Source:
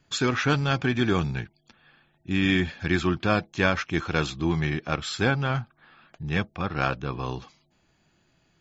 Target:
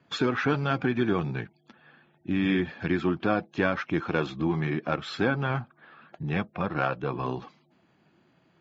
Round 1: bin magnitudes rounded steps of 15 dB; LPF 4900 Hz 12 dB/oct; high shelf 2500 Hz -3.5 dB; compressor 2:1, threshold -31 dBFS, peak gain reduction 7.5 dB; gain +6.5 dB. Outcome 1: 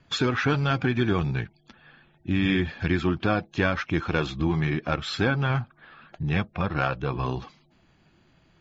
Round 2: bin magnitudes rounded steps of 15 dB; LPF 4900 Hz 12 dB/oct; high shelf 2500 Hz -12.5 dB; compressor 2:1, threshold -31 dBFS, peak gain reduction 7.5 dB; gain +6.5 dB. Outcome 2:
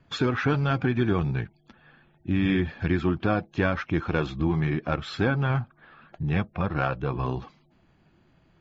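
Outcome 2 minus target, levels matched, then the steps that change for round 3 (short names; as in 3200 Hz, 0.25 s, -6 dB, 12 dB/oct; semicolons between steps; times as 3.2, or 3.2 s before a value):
125 Hz band +3.5 dB
add after compressor: HPF 170 Hz 12 dB/oct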